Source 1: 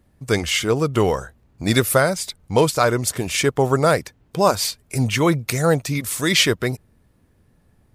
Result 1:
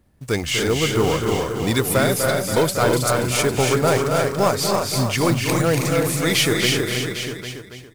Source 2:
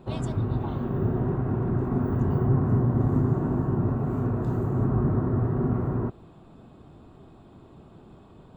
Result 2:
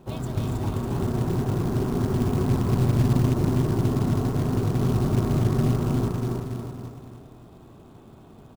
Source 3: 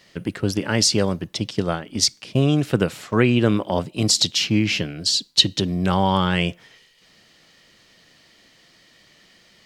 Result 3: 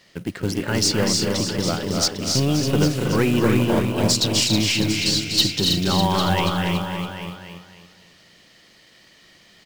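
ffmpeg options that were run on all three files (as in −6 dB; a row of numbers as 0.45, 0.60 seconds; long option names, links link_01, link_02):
-filter_complex "[0:a]asplit=2[link_01][link_02];[link_02]aecho=0:1:281|562|843|1124:0.501|0.17|0.0579|0.0197[link_03];[link_01][link_03]amix=inputs=2:normalize=0,aeval=exprs='0.891*(cos(1*acos(clip(val(0)/0.891,-1,1)))-cos(1*PI/2))+0.0224*(cos(8*acos(clip(val(0)/0.891,-1,1)))-cos(8*PI/2))':channel_layout=same,acontrast=77,asplit=2[link_04][link_05];[link_05]aecho=0:1:247|321|360|802:0.422|0.531|0.1|0.282[link_06];[link_04][link_06]amix=inputs=2:normalize=0,acrusher=bits=5:mode=log:mix=0:aa=0.000001,volume=-8dB"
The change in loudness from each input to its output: 0.0, +1.5, +0.5 LU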